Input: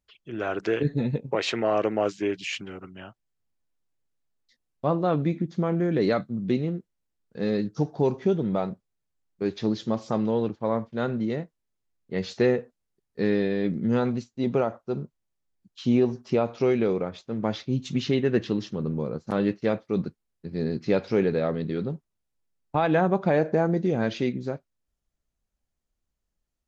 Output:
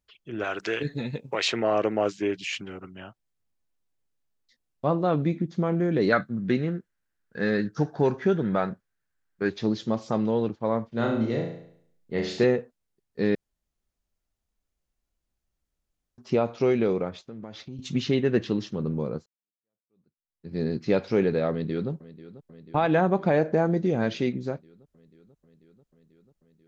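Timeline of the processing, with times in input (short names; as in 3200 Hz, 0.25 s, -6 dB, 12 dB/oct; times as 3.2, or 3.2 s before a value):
0.44–1.48 tilt shelf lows -6.5 dB, about 1100 Hz
6.12–9.5 bell 1600 Hz +15 dB 0.6 oct
10.88–12.44 flutter echo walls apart 6 m, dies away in 0.64 s
13.35–16.18 room tone
17.19–17.79 compressor 5:1, threshold -37 dBFS
19.26–20.52 fade in exponential
21.51–21.91 echo throw 0.49 s, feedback 80%, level -16.5 dB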